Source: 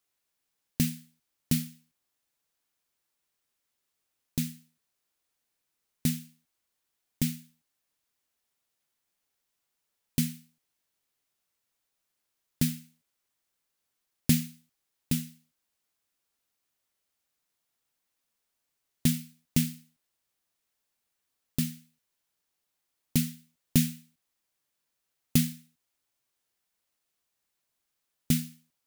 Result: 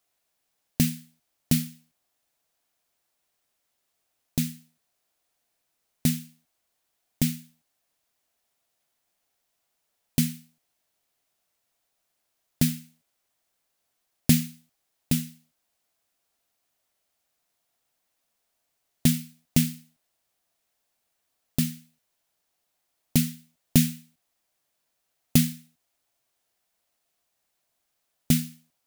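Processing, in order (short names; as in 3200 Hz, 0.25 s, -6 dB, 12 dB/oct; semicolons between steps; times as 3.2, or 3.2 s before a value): bell 680 Hz +8 dB 0.43 oct; gain +4 dB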